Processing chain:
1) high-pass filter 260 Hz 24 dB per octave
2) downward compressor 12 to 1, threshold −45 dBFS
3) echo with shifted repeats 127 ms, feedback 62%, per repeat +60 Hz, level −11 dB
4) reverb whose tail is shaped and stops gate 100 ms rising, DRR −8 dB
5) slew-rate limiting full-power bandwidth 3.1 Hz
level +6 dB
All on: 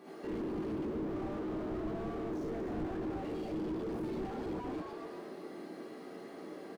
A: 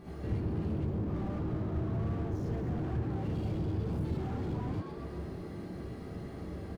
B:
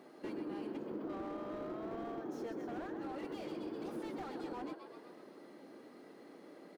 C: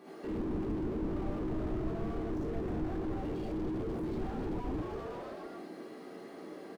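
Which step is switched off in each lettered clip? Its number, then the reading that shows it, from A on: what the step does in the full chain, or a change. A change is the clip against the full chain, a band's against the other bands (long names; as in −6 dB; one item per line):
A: 1, 125 Hz band +15.0 dB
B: 4, change in momentary loudness spread +4 LU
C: 2, average gain reduction 7.5 dB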